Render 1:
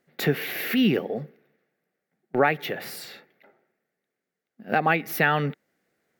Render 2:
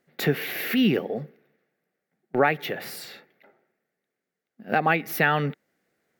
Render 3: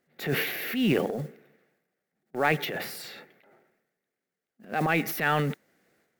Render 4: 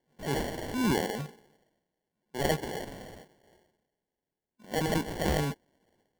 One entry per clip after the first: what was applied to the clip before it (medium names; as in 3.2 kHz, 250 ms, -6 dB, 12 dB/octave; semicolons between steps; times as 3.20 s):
no audible change
modulation noise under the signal 27 dB; transient shaper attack -8 dB, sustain +9 dB; trim -3 dB
sample-and-hold 35×; trim -3 dB